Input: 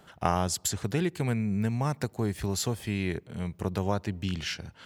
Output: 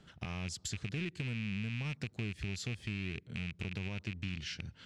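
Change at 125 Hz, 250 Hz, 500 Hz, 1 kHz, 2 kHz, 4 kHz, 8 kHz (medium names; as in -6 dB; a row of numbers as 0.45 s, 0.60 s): -8.0 dB, -10.5 dB, -16.5 dB, -21.5 dB, -3.0 dB, -6.5 dB, -13.0 dB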